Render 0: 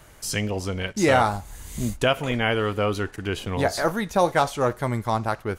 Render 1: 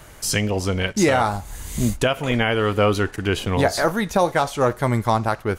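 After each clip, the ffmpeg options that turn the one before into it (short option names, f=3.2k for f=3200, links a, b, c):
-af "alimiter=limit=-13.5dB:level=0:latency=1:release=329,volume=6dB"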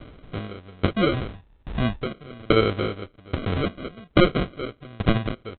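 -af "aresample=8000,acrusher=samples=9:mix=1:aa=0.000001,aresample=44100,aeval=exprs='val(0)*pow(10,-30*if(lt(mod(1.2*n/s,1),2*abs(1.2)/1000),1-mod(1.2*n/s,1)/(2*abs(1.2)/1000),(mod(1.2*n/s,1)-2*abs(1.2)/1000)/(1-2*abs(1.2)/1000))/20)':c=same,volume=4dB"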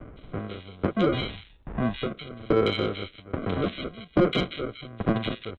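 -filter_complex "[0:a]acrossover=split=2100[a][b];[b]adelay=160[c];[a][c]amix=inputs=2:normalize=0,acrossover=split=140[d][e];[d]acompressor=threshold=-36dB:ratio=6[f];[e]asoftclip=type=tanh:threshold=-11.5dB[g];[f][g]amix=inputs=2:normalize=0"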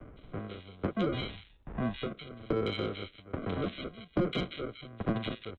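-filter_complex "[0:a]acrossover=split=270[a][b];[b]acompressor=threshold=-24dB:ratio=4[c];[a][c]amix=inputs=2:normalize=0,volume=-6dB"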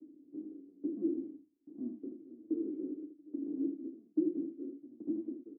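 -filter_complex "[0:a]asoftclip=type=tanh:threshold=-19.5dB,asuperpass=centerf=300:order=4:qfactor=4.6,asplit=2[a][b];[b]aecho=0:1:33|79:0.266|0.422[c];[a][c]amix=inputs=2:normalize=0,volume=5dB"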